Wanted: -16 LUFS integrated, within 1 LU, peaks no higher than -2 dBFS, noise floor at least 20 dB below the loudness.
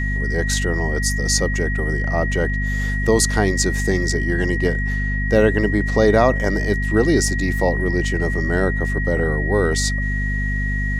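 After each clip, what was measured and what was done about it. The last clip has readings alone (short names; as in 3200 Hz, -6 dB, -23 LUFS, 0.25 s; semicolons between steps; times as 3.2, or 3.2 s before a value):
hum 50 Hz; harmonics up to 250 Hz; hum level -19 dBFS; steady tone 1900 Hz; tone level -25 dBFS; loudness -19.5 LUFS; peak -1.5 dBFS; loudness target -16.0 LUFS
-> de-hum 50 Hz, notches 5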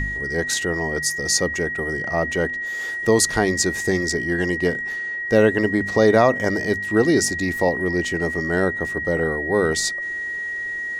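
hum none; steady tone 1900 Hz; tone level -25 dBFS
-> notch 1900 Hz, Q 30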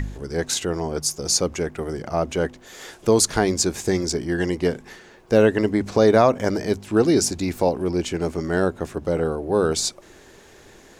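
steady tone none; loudness -22.0 LUFS; peak -3.5 dBFS; loudness target -16.0 LUFS
-> gain +6 dB; limiter -2 dBFS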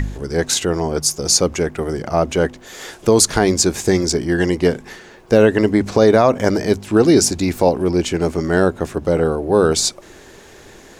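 loudness -16.5 LUFS; peak -2.0 dBFS; noise floor -43 dBFS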